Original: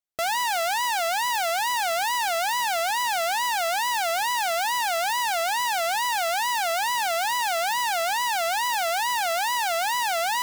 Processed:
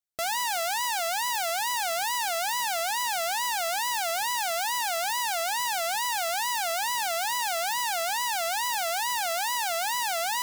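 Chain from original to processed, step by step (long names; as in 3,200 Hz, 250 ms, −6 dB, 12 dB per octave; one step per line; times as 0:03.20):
bass and treble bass +2 dB, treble +5 dB
level −4.5 dB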